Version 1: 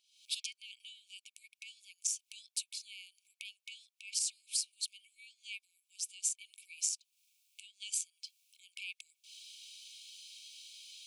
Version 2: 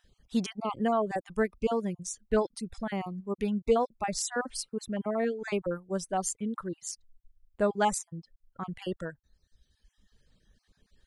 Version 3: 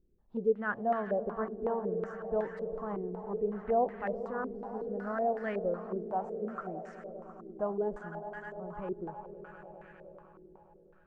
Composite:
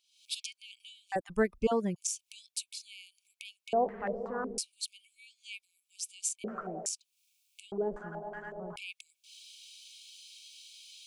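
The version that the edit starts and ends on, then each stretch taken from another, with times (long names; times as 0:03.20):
1
0:01.12–0:01.96: punch in from 2
0:03.73–0:04.58: punch in from 3
0:06.44–0:06.86: punch in from 3
0:07.72–0:08.76: punch in from 3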